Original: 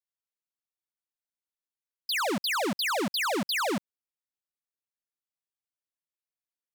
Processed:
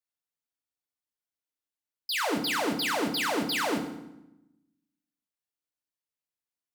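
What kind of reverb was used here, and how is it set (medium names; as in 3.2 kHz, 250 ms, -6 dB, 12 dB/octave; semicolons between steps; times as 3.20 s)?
FDN reverb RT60 0.89 s, low-frequency decay 1.45×, high-frequency decay 0.8×, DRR 3.5 dB; trim -2 dB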